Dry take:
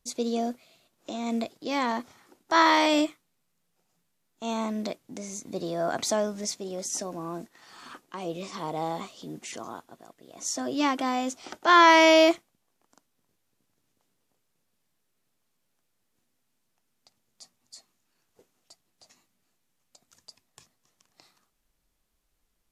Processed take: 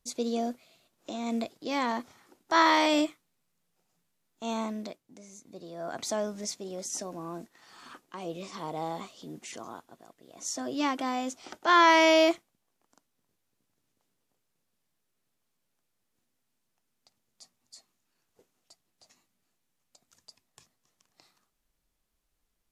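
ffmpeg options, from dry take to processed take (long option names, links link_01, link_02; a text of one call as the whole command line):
ffmpeg -i in.wav -af "volume=7dB,afade=type=out:start_time=4.58:duration=0.44:silence=0.298538,afade=type=in:start_time=5.69:duration=0.6:silence=0.354813" out.wav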